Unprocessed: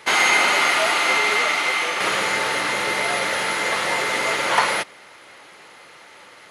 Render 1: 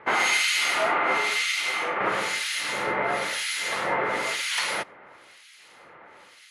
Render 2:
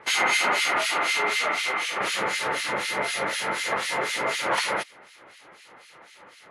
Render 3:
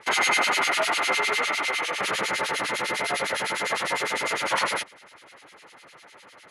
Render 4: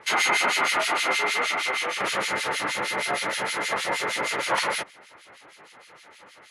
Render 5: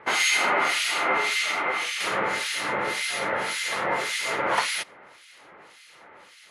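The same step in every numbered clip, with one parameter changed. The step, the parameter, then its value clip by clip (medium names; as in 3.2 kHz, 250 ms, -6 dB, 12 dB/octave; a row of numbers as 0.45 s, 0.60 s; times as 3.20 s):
harmonic tremolo, rate: 1 Hz, 4 Hz, 9.9 Hz, 6.4 Hz, 1.8 Hz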